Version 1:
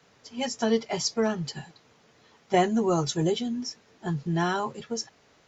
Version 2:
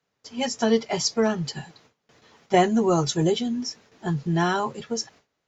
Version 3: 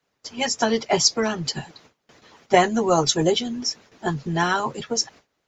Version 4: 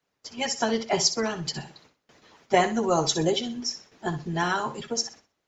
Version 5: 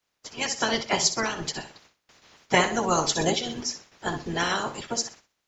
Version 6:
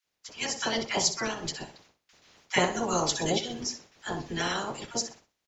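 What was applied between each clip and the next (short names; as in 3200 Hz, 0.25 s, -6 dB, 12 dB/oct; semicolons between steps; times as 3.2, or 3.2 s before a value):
gate with hold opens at -48 dBFS; gain +3.5 dB
harmonic-percussive split harmonic -10 dB; gain +7.5 dB
flutter echo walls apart 10.7 m, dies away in 0.32 s; gain -4.5 dB
spectral limiter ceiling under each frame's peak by 15 dB
bands offset in time highs, lows 40 ms, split 1200 Hz; gain -3 dB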